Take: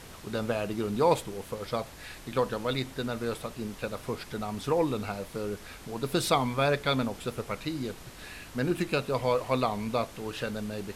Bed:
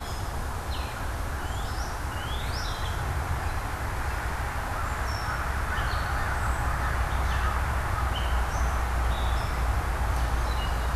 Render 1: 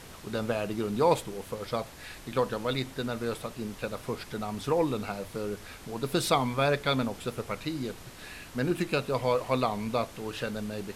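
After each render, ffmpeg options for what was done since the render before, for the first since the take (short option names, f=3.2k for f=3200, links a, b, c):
-af "bandreject=f=50:t=h:w=4,bandreject=f=100:t=h:w=4"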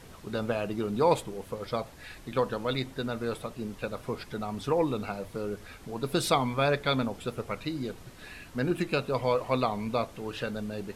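-af "afftdn=nr=6:nf=-47"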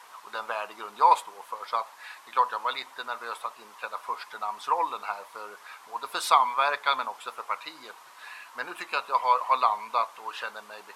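-af "highpass=f=1k:t=q:w=4.2"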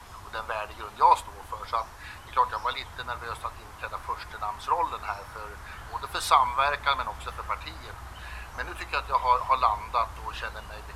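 -filter_complex "[1:a]volume=-15.5dB[a];[0:a][a]amix=inputs=2:normalize=0"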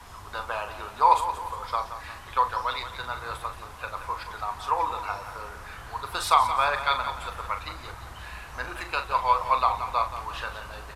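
-filter_complex "[0:a]asplit=2[a][b];[b]adelay=40,volume=-9dB[c];[a][c]amix=inputs=2:normalize=0,aecho=1:1:176|352|528|704|880:0.282|0.127|0.0571|0.0257|0.0116"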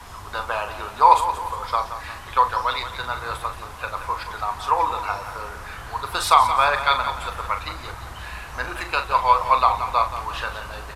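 -af "volume=5.5dB,alimiter=limit=-1dB:level=0:latency=1"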